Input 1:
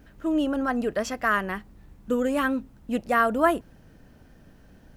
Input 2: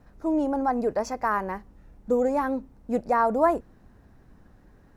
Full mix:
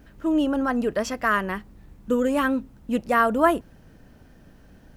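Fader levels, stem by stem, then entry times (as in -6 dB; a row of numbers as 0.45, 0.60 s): +1.5, -12.0 dB; 0.00, 0.00 s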